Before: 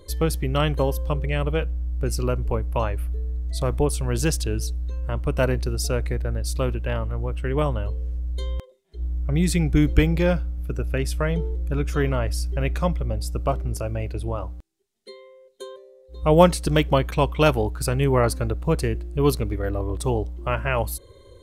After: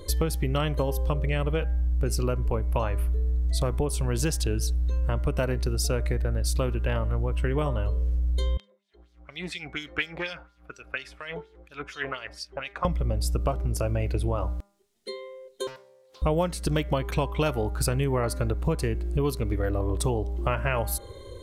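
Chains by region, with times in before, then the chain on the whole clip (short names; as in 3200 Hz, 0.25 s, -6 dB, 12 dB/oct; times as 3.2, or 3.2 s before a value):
8.57–12.85 LFO band-pass sine 4.2 Hz 760–4800 Hz + Doppler distortion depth 0.13 ms
15.67–16.22 HPF 1000 Hz + notch 3600 Hz, Q 9.9 + Doppler distortion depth 0.62 ms
whole clip: de-hum 200.7 Hz, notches 11; compressor 10:1, threshold -28 dBFS; gain +6 dB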